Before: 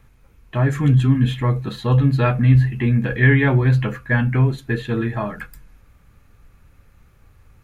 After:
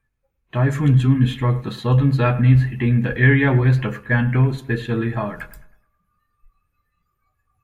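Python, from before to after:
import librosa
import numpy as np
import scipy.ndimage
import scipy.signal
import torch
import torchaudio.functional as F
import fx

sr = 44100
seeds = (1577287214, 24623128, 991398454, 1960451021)

y = fx.noise_reduce_blind(x, sr, reduce_db=22)
y = fx.echo_bbd(y, sr, ms=105, stages=2048, feedback_pct=41, wet_db=-17.0)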